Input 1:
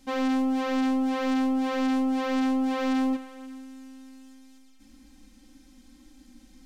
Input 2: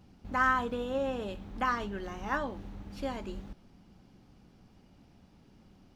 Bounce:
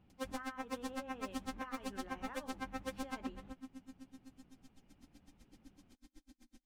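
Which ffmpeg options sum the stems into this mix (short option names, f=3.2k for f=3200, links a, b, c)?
-filter_complex "[0:a]bandreject=f=50:t=h:w=6,bandreject=f=100:t=h:w=6,bandreject=f=150:t=h:w=6,bandreject=f=200:t=h:w=6,bandreject=f=250:t=h:w=6,aeval=exprs='0.0355*(abs(mod(val(0)/0.0355+3,4)-2)-1)':c=same,aeval=exprs='val(0)*pow(10,-40*(0.5-0.5*cos(2*PI*7.9*n/s))/20)':c=same,adelay=100,volume=-3dB[a];[1:a]highshelf=f=3.9k:t=q:w=1.5:g=-10.5,acompressor=threshold=-37dB:ratio=16,volume=-9.5dB[b];[a][b]amix=inputs=2:normalize=0"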